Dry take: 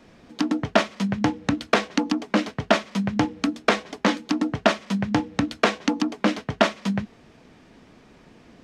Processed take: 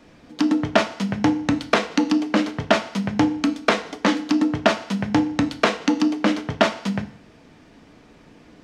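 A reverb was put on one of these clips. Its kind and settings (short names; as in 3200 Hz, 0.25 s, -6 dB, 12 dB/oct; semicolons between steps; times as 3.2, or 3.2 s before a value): FDN reverb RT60 0.64 s, low-frequency decay 1×, high-frequency decay 0.95×, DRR 9 dB; gain +1 dB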